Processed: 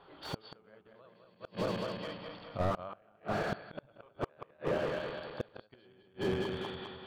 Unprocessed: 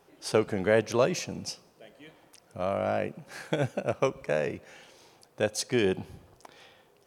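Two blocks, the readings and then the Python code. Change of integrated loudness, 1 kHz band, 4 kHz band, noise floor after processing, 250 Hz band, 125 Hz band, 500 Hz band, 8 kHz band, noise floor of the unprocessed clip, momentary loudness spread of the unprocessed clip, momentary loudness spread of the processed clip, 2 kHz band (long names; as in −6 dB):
−9.0 dB, −4.5 dB, −6.5 dB, −66 dBFS, −7.5 dB, −6.0 dB, −9.0 dB, below −20 dB, −63 dBFS, 14 LU, 16 LU, −8.0 dB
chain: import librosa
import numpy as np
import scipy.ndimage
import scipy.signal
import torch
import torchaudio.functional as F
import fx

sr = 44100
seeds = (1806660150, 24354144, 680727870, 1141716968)

y = fx.reverse_delay_fb(x, sr, ms=104, feedback_pct=71, wet_db=-1)
y = fx.low_shelf(y, sr, hz=170.0, db=5.0)
y = fx.hum_notches(y, sr, base_hz=50, count=8)
y = fx.gate_flip(y, sr, shuts_db=-16.0, range_db=-40)
y = scipy.signal.sosfilt(scipy.signal.cheby1(6, 9, 4600.0, 'lowpass', fs=sr, output='sos'), y)
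y = y + 10.0 ** (-17.5 / 20.0) * np.pad(y, (int(185 * sr / 1000.0), 0))[:len(y)]
y = fx.slew_limit(y, sr, full_power_hz=9.2)
y = y * 10.0 ** (8.5 / 20.0)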